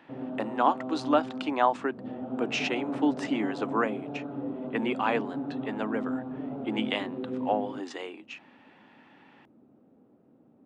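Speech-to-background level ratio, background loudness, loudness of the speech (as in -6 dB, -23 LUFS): 5.5 dB, -36.0 LUFS, -30.5 LUFS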